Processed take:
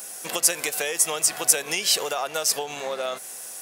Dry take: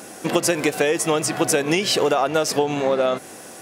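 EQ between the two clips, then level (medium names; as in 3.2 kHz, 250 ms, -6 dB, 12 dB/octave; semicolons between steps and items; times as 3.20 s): RIAA curve recording; peaking EQ 300 Hz -7.5 dB 0.57 oct; -7.0 dB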